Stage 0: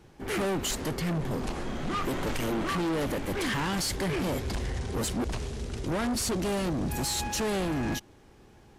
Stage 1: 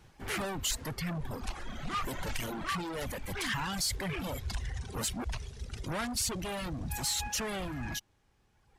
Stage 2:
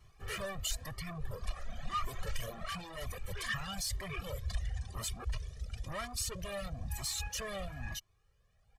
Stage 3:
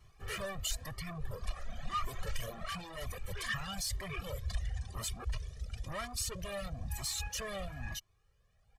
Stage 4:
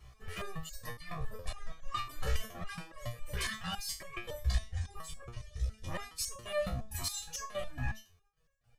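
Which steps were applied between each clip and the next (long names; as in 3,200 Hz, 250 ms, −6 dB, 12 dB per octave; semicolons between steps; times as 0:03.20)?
reverb reduction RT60 1.8 s; parametric band 340 Hz −9.5 dB 1.8 octaves
comb filter 1.7 ms, depth 70%; flanger whose copies keep moving one way rising 1 Hz; level −2.5 dB
no processing that can be heard
gate pattern "xxx.xxx.xx.x" 165 BPM −12 dB; step-sequenced resonator 7.2 Hz 64–550 Hz; level +13 dB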